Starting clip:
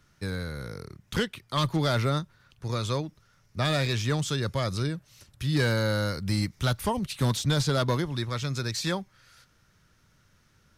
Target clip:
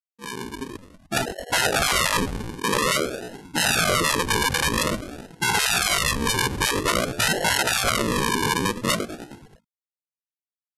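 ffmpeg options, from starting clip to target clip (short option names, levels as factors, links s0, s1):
-filter_complex "[0:a]asplit=2[s0][s1];[s1]acrusher=bits=4:mode=log:mix=0:aa=0.000001,volume=0.316[s2];[s0][s2]amix=inputs=2:normalize=0,afftfilt=real='hypot(re,im)*cos(2*PI*random(0))':imag='hypot(re,im)*sin(2*PI*random(1))':win_size=512:overlap=0.75,afreqshift=-280,afftfilt=real='re*gte(hypot(re,im),0.0891)':imag='im*gte(hypot(re,im),0.0891)':win_size=1024:overlap=0.75,highpass=280,equalizer=f=460:t=q:w=4:g=-5,equalizer=f=760:t=q:w=4:g=-10,equalizer=f=1100:t=q:w=4:g=6,lowpass=f=2000:w=0.5412,lowpass=f=2000:w=1.3066,asplit=7[s3][s4][s5][s6][s7][s8][s9];[s4]adelay=104,afreqshift=80,volume=0.119[s10];[s5]adelay=208,afreqshift=160,volume=0.0759[s11];[s6]adelay=312,afreqshift=240,volume=0.0484[s12];[s7]adelay=416,afreqshift=320,volume=0.0313[s13];[s8]adelay=520,afreqshift=400,volume=0.02[s14];[s9]adelay=624,afreqshift=480,volume=0.0127[s15];[s3][s10][s11][s12][s13][s14][s15]amix=inputs=7:normalize=0,aresample=16000,acrusher=samples=30:mix=1:aa=0.000001:lfo=1:lforange=18:lforate=0.5,aresample=44100,afftfilt=real='re*lt(hypot(re,im),0.0316)':imag='im*lt(hypot(re,im),0.0316)':win_size=1024:overlap=0.75,dynaudnorm=f=270:g=5:m=5.01,asetrate=70004,aresample=44100,atempo=0.629961,alimiter=level_in=11.2:limit=0.891:release=50:level=0:latency=1,volume=0.501"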